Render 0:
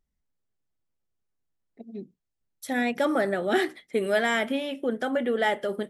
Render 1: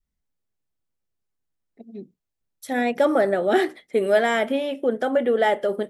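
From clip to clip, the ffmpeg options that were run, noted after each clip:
-af "adynamicequalizer=threshold=0.0112:dfrequency=560:dqfactor=0.81:tfrequency=560:tqfactor=0.81:attack=5:release=100:ratio=0.375:range=3.5:mode=boostabove:tftype=bell"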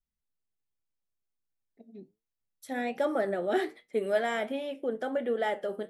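-af "flanger=delay=8.3:depth=3.1:regen=78:speed=1.3:shape=sinusoidal,volume=0.562"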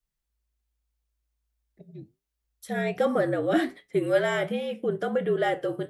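-af "afreqshift=-55,volume=1.68"

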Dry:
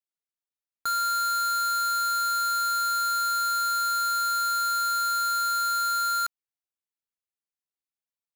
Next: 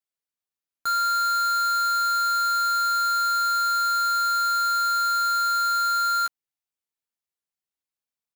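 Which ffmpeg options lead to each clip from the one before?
-filter_complex "[0:a]asplit=2[s0][s1];[s1]adelay=13,volume=0.501[s2];[s0][s2]amix=inputs=2:normalize=0"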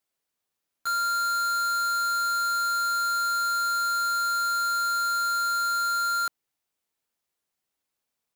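-filter_complex "[0:a]equalizer=f=470:w=0.43:g=3.5,asplit=2[s0][s1];[s1]aeval=exprs='0.112*sin(PI/2*4.47*val(0)/0.112)':c=same,volume=0.355[s2];[s0][s2]amix=inputs=2:normalize=0,volume=0.668"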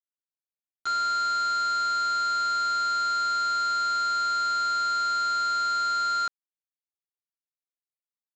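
-af "lowpass=5900,aresample=16000,acrusher=bits=6:mix=0:aa=0.000001,aresample=44100"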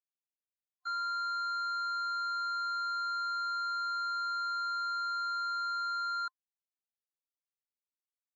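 -af "afftdn=nr=22:nf=-36,superequalizer=9b=3.55:15b=0.447,volume=0.376"

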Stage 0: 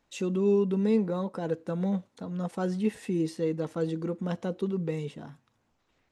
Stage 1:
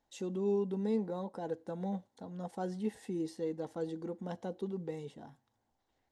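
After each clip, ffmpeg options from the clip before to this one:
-af "equalizer=f=160:t=o:w=0.33:g=-6,equalizer=f=800:t=o:w=0.33:g=8,equalizer=f=1250:t=o:w=0.33:g=-7,equalizer=f=2500:t=o:w=0.33:g=-9,volume=0.422"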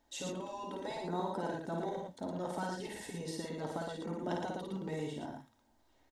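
-filter_complex "[0:a]aecho=1:1:3.2:0.4,afftfilt=real='re*lt(hypot(re,im),0.0708)':imag='im*lt(hypot(re,im),0.0708)':win_size=1024:overlap=0.75,asplit=2[s0][s1];[s1]aecho=0:1:52.48|113.7:0.708|0.631[s2];[s0][s2]amix=inputs=2:normalize=0,volume=1.88"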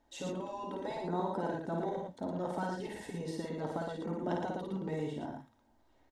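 -af "highshelf=f=2800:g=-9,volume=1.33"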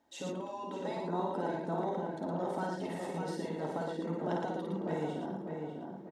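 -filter_complex "[0:a]highpass=130,asplit=2[s0][s1];[s1]adelay=597,lowpass=f=1900:p=1,volume=0.631,asplit=2[s2][s3];[s3]adelay=597,lowpass=f=1900:p=1,volume=0.47,asplit=2[s4][s5];[s5]adelay=597,lowpass=f=1900:p=1,volume=0.47,asplit=2[s6][s7];[s7]adelay=597,lowpass=f=1900:p=1,volume=0.47,asplit=2[s8][s9];[s9]adelay=597,lowpass=f=1900:p=1,volume=0.47,asplit=2[s10][s11];[s11]adelay=597,lowpass=f=1900:p=1,volume=0.47[s12];[s0][s2][s4][s6][s8][s10][s12]amix=inputs=7:normalize=0"

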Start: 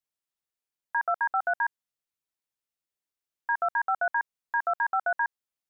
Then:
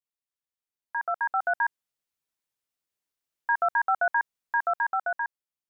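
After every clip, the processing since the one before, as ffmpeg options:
-af "dynaudnorm=f=270:g=9:m=2.82,volume=0.473"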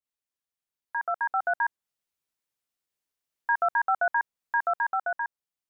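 -af "adynamicequalizer=threshold=0.0141:dfrequency=1800:dqfactor=0.7:tfrequency=1800:tqfactor=0.7:attack=5:release=100:ratio=0.375:range=2:mode=cutabove:tftype=highshelf"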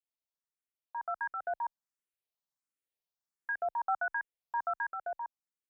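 -filter_complex "[0:a]equalizer=f=670:t=o:w=1.4:g=3,asplit=2[s0][s1];[s1]afreqshift=1.4[s2];[s0][s2]amix=inputs=2:normalize=1,volume=0.447"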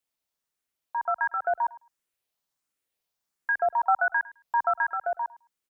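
-af "aecho=1:1:106|212:0.1|0.016,volume=2.82"

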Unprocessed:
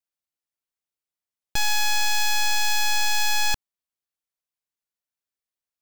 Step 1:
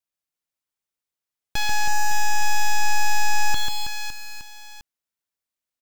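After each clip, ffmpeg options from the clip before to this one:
-filter_complex "[0:a]aecho=1:1:140|322|558.6|866.2|1266:0.631|0.398|0.251|0.158|0.1,acrossover=split=5000[s0][s1];[s1]acompressor=threshold=0.0251:ratio=4:attack=1:release=60[s2];[s0][s2]amix=inputs=2:normalize=0"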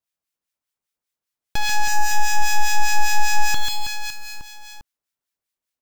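-filter_complex "[0:a]acrossover=split=1300[s0][s1];[s0]aeval=exprs='val(0)*(1-0.7/2+0.7/2*cos(2*PI*5*n/s))':c=same[s2];[s1]aeval=exprs='val(0)*(1-0.7/2-0.7/2*cos(2*PI*5*n/s))':c=same[s3];[s2][s3]amix=inputs=2:normalize=0,volume=1.88"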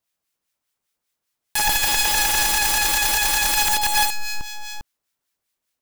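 -af "aeval=exprs='(mod(11.9*val(0)+1,2)-1)/11.9':c=same,volume=2.24"

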